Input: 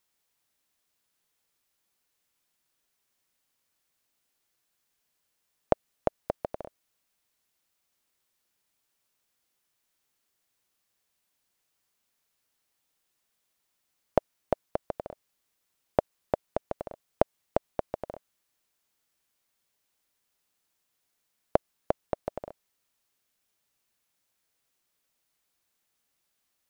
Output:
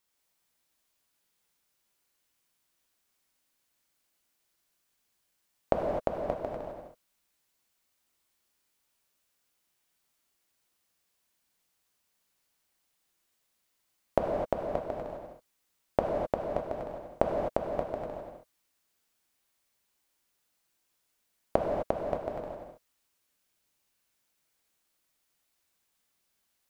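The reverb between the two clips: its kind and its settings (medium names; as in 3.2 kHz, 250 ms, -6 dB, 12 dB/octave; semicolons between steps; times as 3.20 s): gated-style reverb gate 280 ms flat, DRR -1 dB; trim -2.5 dB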